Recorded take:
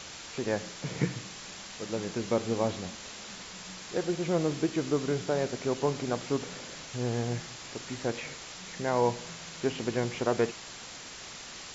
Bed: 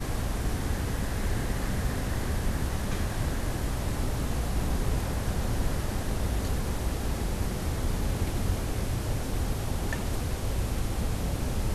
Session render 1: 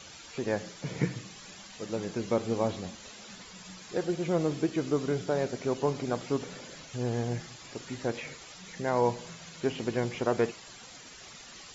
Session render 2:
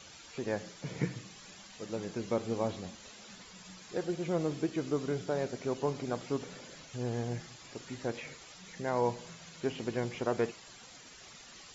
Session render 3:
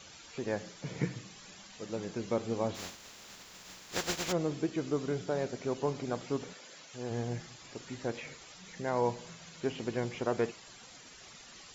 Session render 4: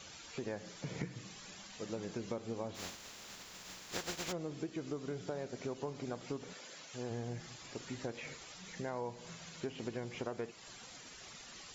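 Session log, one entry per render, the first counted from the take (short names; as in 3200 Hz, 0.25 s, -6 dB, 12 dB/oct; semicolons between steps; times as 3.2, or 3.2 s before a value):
denoiser 10 dB, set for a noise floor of -45 dBFS
gain -4 dB
2.74–4.31 spectral contrast lowered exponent 0.36; 6.52–7.1 HPF 1000 Hz -> 270 Hz 6 dB/oct
compressor 6:1, threshold -37 dBFS, peak gain reduction 12 dB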